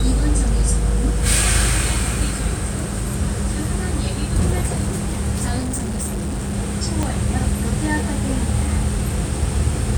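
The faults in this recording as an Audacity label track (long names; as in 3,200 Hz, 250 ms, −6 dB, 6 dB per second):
5.580000	6.540000	clipping −20.5 dBFS
7.030000	7.030000	click −9 dBFS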